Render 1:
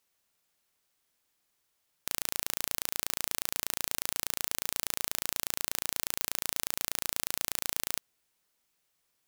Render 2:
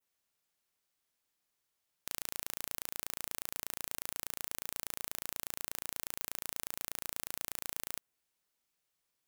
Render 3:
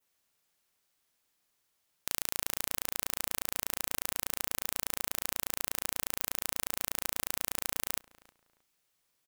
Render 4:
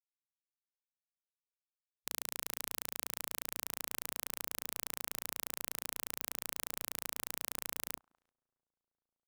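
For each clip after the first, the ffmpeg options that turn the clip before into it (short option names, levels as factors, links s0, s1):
-af "adynamicequalizer=threshold=0.00224:dfrequency=4500:dqfactor=0.85:tfrequency=4500:tqfactor=0.85:attack=5:release=100:ratio=0.375:range=2:mode=cutabove:tftype=bell,volume=0.473"
-filter_complex "[0:a]asplit=2[s0][s1];[s1]adelay=314,lowpass=f=2100:p=1,volume=0.112,asplit=2[s2][s3];[s3]adelay=314,lowpass=f=2100:p=1,volume=0.27[s4];[s0][s2][s4]amix=inputs=3:normalize=0,volume=2"
-filter_complex "[0:a]asplit=2[s0][s1];[s1]adelay=1574,volume=0.0447,highshelf=f=4000:g=-35.4[s2];[s0][s2]amix=inputs=2:normalize=0,afftfilt=real='re*gte(hypot(re,im),0.000398)':imag='im*gte(hypot(re,im),0.000398)':win_size=1024:overlap=0.75,afwtdn=0.00398,volume=0.501"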